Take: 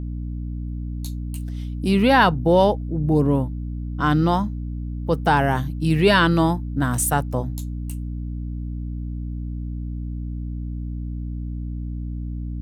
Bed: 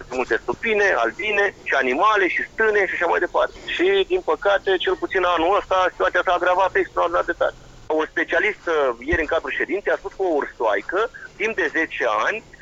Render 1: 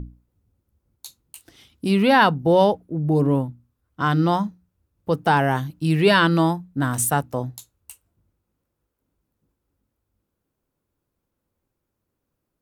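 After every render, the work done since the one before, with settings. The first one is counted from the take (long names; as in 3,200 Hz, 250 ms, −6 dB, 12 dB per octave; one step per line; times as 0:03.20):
mains-hum notches 60/120/180/240/300 Hz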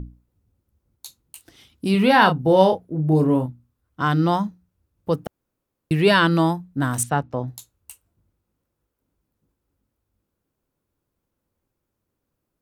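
0:01.91–0:03.46: double-tracking delay 32 ms −7 dB
0:05.27–0:05.91: fill with room tone
0:07.03–0:07.48: high-frequency loss of the air 160 metres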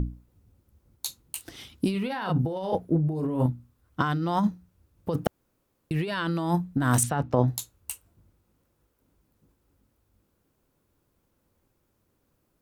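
compressor whose output falls as the input rises −26 dBFS, ratio −1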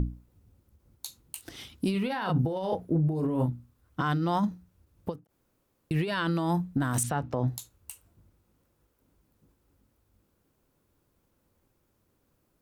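brickwall limiter −17.5 dBFS, peak gain reduction 10 dB
every ending faded ahead of time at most 250 dB per second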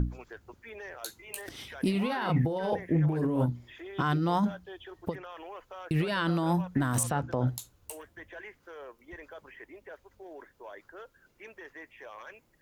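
mix in bed −26 dB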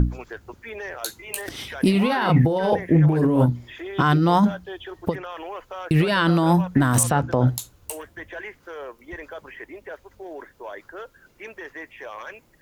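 level +9.5 dB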